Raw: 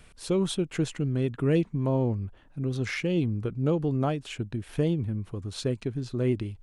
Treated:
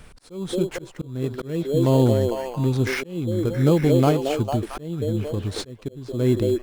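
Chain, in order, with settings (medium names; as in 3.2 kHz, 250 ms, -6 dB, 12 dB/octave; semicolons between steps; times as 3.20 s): repeats whose band climbs or falls 225 ms, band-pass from 460 Hz, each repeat 0.7 oct, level -1 dB; in parallel at -5.5 dB: sample-rate reducer 3.7 kHz, jitter 0%; on the sum: slow attack 505 ms; trim +4.5 dB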